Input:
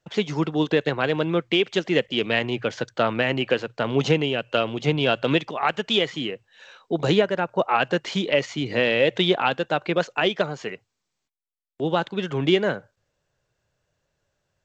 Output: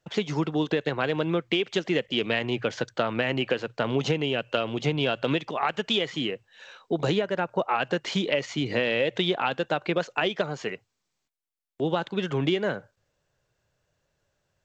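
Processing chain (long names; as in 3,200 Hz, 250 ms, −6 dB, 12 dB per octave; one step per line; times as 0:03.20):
downward compressor, threshold −21 dBFS, peak gain reduction 8.5 dB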